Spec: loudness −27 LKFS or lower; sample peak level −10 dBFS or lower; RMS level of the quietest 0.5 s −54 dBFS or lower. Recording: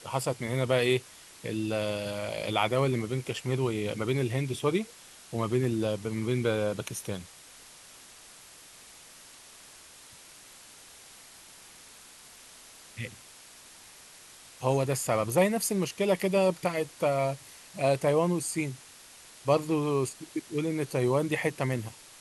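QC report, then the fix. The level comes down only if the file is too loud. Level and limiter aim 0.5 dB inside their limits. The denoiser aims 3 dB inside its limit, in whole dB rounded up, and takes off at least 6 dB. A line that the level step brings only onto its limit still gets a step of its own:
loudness −29.5 LKFS: in spec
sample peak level −10.5 dBFS: in spec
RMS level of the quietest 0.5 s −52 dBFS: out of spec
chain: broadband denoise 6 dB, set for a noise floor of −52 dBFS

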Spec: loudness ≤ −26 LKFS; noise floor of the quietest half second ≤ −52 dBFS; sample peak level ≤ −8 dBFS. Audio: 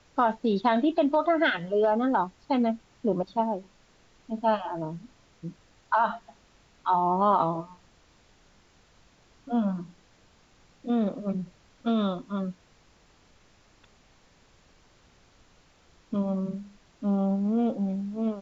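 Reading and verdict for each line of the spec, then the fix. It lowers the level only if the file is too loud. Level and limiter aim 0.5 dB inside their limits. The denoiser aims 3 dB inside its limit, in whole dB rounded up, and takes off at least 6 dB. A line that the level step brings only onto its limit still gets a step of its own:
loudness −27.5 LKFS: in spec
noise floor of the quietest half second −60 dBFS: in spec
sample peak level −10.0 dBFS: in spec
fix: no processing needed

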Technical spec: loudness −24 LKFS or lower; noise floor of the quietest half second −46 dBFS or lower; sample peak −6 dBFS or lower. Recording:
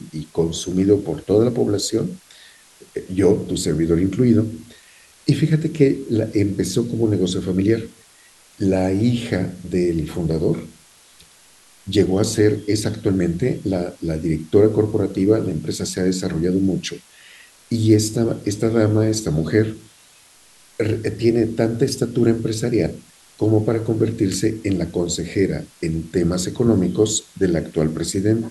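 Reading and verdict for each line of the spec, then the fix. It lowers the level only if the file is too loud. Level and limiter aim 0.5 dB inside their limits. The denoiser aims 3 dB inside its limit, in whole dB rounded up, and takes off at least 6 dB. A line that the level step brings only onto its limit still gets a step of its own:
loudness −20.0 LKFS: out of spec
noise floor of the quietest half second −51 dBFS: in spec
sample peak −2.0 dBFS: out of spec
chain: level −4.5 dB

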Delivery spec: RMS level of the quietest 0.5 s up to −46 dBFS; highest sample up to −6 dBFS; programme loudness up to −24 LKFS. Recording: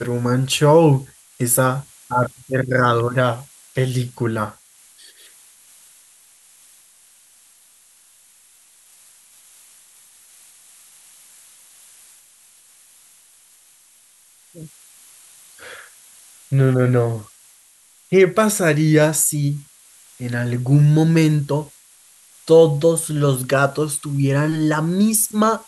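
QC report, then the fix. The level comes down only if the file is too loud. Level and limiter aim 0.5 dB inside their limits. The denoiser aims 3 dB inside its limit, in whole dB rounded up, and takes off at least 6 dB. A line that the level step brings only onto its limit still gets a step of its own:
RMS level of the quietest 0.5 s −53 dBFS: in spec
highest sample −3.0 dBFS: out of spec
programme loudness −17.5 LKFS: out of spec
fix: level −7 dB

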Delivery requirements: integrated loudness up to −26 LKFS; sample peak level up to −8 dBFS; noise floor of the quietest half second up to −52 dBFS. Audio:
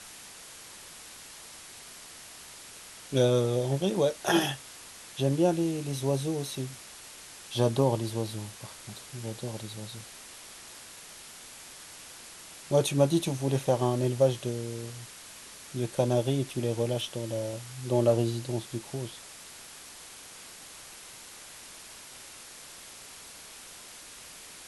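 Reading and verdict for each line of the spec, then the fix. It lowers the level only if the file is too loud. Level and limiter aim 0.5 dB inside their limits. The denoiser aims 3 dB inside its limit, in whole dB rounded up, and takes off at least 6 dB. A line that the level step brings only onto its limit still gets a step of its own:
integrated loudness −29.5 LKFS: in spec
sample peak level −10.5 dBFS: in spec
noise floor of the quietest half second −47 dBFS: out of spec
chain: broadband denoise 8 dB, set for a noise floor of −47 dBFS

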